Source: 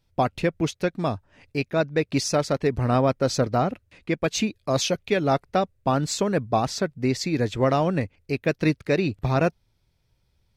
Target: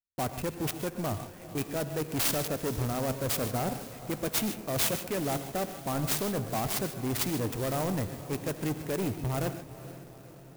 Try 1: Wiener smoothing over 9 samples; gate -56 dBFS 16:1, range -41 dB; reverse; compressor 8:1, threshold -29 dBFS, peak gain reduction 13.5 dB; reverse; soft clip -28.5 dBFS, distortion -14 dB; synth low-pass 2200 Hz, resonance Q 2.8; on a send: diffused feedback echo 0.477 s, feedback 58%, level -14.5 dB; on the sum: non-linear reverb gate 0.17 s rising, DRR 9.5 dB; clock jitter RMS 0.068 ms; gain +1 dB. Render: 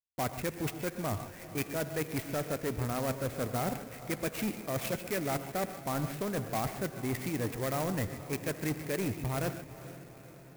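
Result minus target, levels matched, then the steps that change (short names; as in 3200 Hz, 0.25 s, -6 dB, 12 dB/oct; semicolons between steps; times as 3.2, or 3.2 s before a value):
compressor: peak gain reduction +5.5 dB; 2000 Hz band +3.0 dB
change: compressor 8:1, threshold -22.5 dBFS, peak gain reduction 7.5 dB; change: synth low-pass 6100 Hz, resonance Q 2.8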